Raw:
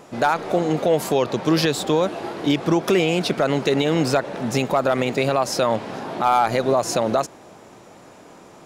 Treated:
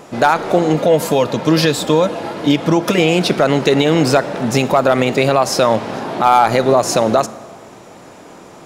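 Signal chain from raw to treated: 0.74–2.98 notch comb 380 Hz; reverb RT60 1.2 s, pre-delay 17 ms, DRR 16 dB; gain +6.5 dB

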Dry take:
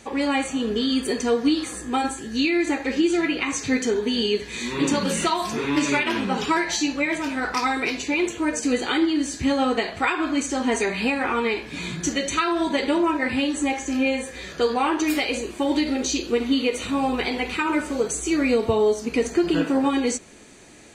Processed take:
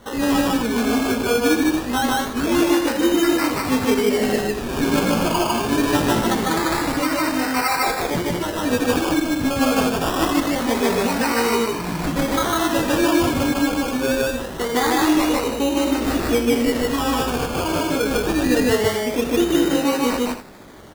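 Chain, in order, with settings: 7.44–8.63 HPF 370 Hz 24 dB/oct; in parallel at -1.5 dB: limiter -20 dBFS, peak gain reduction 10.5 dB; on the sum: chorus 0.18 Hz, delay 17 ms, depth 3.7 ms; decimation with a swept rate 18×, swing 60% 0.24 Hz; on a send: loudspeakers at several distances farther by 52 m 0 dB, 80 m -10 dB

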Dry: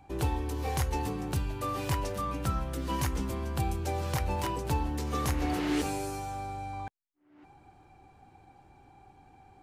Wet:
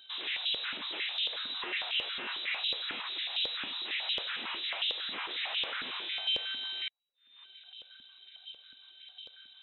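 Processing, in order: wavefolder -34.5 dBFS; inverted band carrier 3900 Hz; stepped high-pass 11 Hz 250–2900 Hz

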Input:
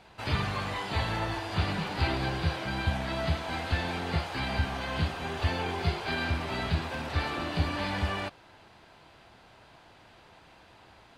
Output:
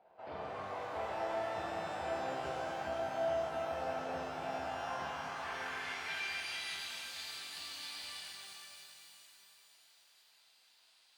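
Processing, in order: band-pass sweep 650 Hz -> 4700 Hz, 4.53–7.01; shimmer reverb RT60 3.6 s, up +12 st, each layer -8 dB, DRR -4 dB; gain -5.5 dB

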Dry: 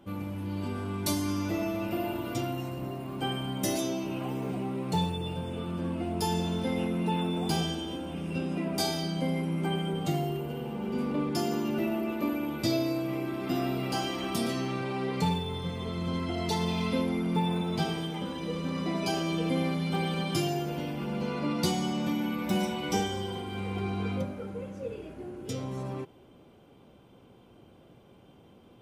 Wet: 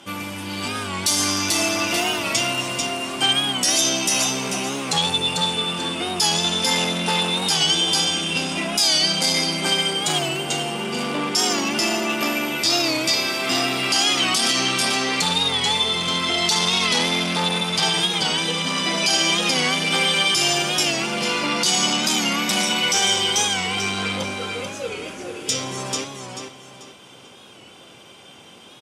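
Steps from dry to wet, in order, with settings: tone controls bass +6 dB, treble +1 dB; notch 4100 Hz, Q 15; feedback echo 0.439 s, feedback 29%, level -6.5 dB; soft clip -22 dBFS, distortion -15 dB; weighting filter ITU-R 468; maximiser +20.5 dB; record warp 45 rpm, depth 100 cents; gain -7.5 dB

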